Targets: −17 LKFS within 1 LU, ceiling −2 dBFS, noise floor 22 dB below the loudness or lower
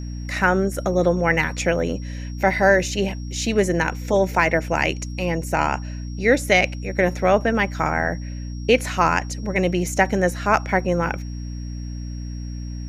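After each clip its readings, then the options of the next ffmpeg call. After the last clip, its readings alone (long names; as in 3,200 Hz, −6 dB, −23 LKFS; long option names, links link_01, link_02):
mains hum 60 Hz; hum harmonics up to 300 Hz; level of the hum −28 dBFS; interfering tone 5,600 Hz; level of the tone −46 dBFS; integrated loudness −21.0 LKFS; sample peak −3.0 dBFS; target loudness −17.0 LKFS
→ -af "bandreject=frequency=60:width_type=h:width=6,bandreject=frequency=120:width_type=h:width=6,bandreject=frequency=180:width_type=h:width=6,bandreject=frequency=240:width_type=h:width=6,bandreject=frequency=300:width_type=h:width=6"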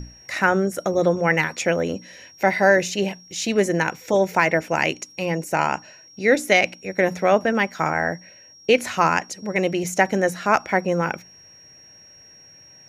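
mains hum none found; interfering tone 5,600 Hz; level of the tone −46 dBFS
→ -af "bandreject=frequency=5600:width=30"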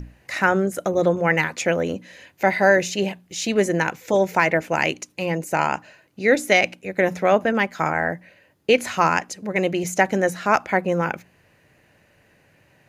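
interfering tone none found; integrated loudness −21.5 LKFS; sample peak −3.5 dBFS; target loudness −17.0 LKFS
→ -af "volume=4.5dB,alimiter=limit=-2dB:level=0:latency=1"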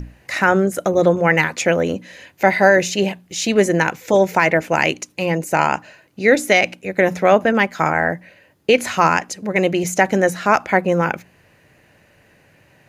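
integrated loudness −17.5 LKFS; sample peak −2.0 dBFS; background noise floor −55 dBFS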